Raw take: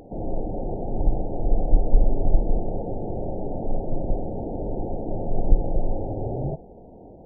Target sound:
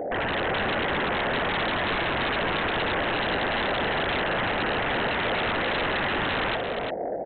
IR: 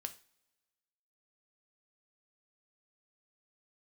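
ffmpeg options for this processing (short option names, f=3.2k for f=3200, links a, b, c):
-af "bandpass=f=620:t=q:w=2.3:csg=0,aresample=8000,aeval=exprs='0.0631*sin(PI/2*7.08*val(0)/0.0631)':c=same,aresample=44100,aecho=1:1:349:0.501"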